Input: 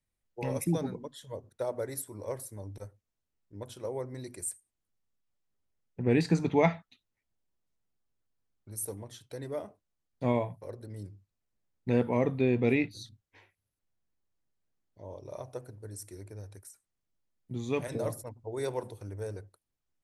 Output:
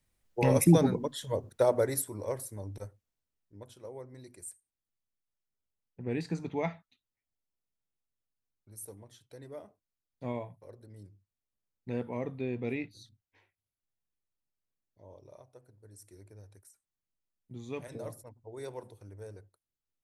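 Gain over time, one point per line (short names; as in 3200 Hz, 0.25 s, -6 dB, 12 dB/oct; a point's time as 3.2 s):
1.72 s +8.5 dB
2.34 s +1.5 dB
2.84 s +1.5 dB
3.8 s -8.5 dB
15.24 s -8.5 dB
15.5 s -16 dB
16.16 s -8 dB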